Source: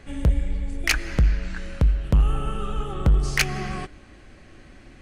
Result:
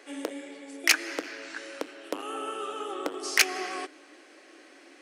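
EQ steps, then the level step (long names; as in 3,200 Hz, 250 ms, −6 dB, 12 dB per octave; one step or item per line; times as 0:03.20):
Chebyshev high-pass filter 290 Hz, order 5
parametric band 5,400 Hz +4 dB 0.21 octaves
high-shelf EQ 7,700 Hz +4.5 dB
0.0 dB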